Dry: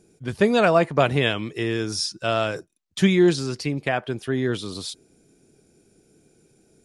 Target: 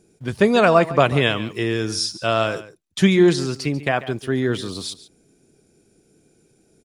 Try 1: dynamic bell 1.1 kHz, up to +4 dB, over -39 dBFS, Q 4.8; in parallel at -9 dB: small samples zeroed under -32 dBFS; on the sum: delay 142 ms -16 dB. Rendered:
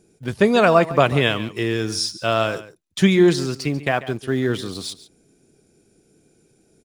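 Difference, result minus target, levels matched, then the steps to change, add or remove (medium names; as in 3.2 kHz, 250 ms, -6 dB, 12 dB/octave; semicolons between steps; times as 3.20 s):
small samples zeroed: distortion +13 dB
change: small samples zeroed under -43 dBFS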